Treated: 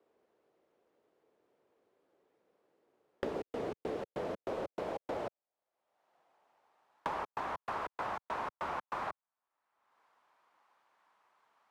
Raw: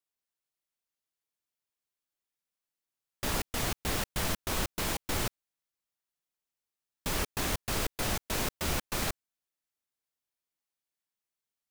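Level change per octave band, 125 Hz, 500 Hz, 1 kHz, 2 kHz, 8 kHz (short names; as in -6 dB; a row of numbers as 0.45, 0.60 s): -16.0, 0.0, +0.5, -9.0, -28.5 dB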